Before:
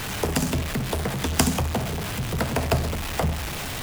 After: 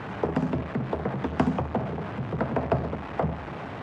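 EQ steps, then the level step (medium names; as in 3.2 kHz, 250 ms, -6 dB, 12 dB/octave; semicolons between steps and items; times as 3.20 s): high-pass 130 Hz 12 dB/octave; low-pass 1.3 kHz 12 dB/octave; 0.0 dB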